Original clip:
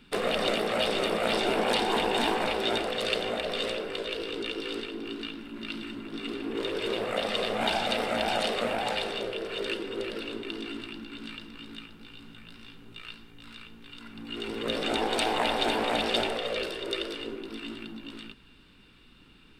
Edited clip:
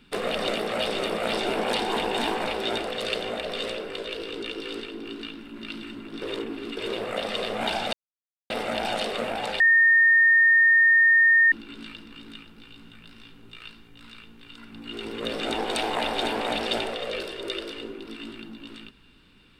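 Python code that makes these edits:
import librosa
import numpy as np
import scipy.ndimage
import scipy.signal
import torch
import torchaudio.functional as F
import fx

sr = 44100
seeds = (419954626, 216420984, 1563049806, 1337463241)

y = fx.edit(x, sr, fx.reverse_span(start_s=6.22, length_s=0.55),
    fx.insert_silence(at_s=7.93, length_s=0.57),
    fx.bleep(start_s=9.03, length_s=1.92, hz=1830.0, db=-14.0), tone=tone)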